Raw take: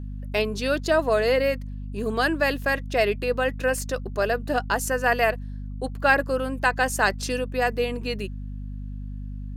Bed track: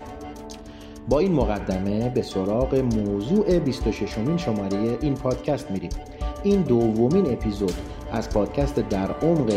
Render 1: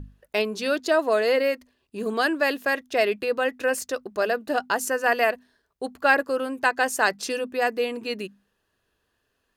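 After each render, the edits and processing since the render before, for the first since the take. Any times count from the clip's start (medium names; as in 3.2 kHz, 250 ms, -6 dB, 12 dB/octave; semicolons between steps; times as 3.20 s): hum notches 50/100/150/200/250 Hz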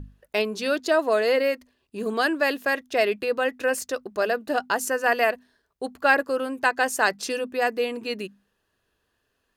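no audible change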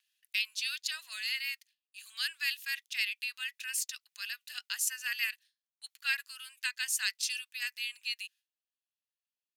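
gate with hold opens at -45 dBFS; inverse Chebyshev high-pass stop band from 410 Hz, stop band 80 dB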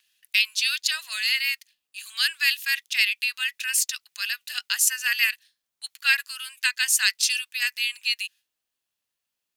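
trim +11 dB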